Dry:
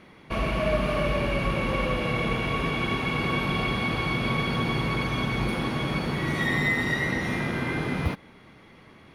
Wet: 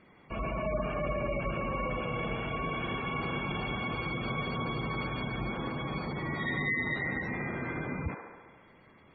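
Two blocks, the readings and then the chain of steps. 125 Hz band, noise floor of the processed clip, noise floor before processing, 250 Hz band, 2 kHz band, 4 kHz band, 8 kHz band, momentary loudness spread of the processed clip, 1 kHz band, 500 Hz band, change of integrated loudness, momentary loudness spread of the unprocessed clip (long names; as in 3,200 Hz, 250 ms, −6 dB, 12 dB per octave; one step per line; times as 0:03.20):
−8.0 dB, −58 dBFS, −52 dBFS, −8.0 dB, −7.0 dB, −10.5 dB, below −35 dB, 4 LU, −5.5 dB, −6.5 dB, −7.0 dB, 4 LU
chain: delay with a band-pass on its return 70 ms, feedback 70%, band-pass 940 Hz, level −3.5 dB
gate on every frequency bin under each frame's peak −20 dB strong
level −8 dB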